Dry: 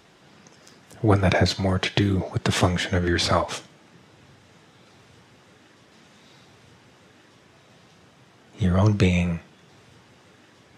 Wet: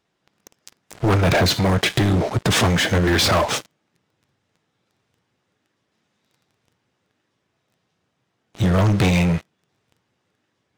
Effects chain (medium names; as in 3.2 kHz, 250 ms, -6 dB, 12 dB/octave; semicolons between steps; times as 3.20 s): waveshaping leveller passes 5; trim -8.5 dB